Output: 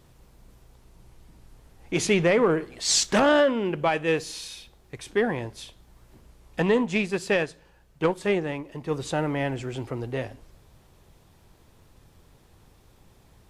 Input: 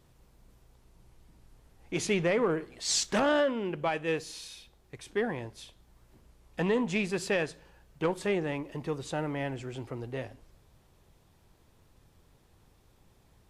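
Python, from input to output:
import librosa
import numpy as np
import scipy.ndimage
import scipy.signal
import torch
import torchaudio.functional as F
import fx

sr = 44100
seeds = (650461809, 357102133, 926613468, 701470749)

y = fx.upward_expand(x, sr, threshold_db=-37.0, expansion=1.5, at=(6.62, 8.91))
y = y * librosa.db_to_amplitude(6.5)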